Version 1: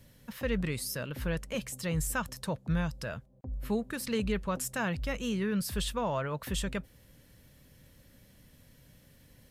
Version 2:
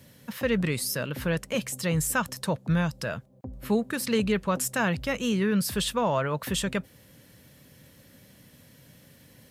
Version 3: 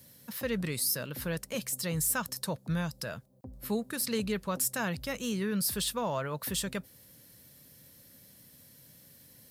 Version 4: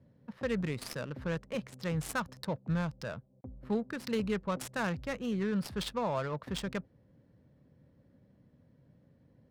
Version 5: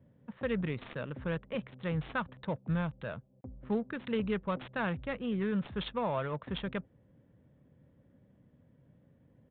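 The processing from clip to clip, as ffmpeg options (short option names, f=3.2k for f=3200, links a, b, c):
-af "highpass=110,volume=6.5dB"
-af "aexciter=amount=1.3:drive=9.1:freq=4k,volume=-7dB"
-af "adynamicsmooth=sensitivity=6:basefreq=860"
-af "aresample=8000,aresample=44100"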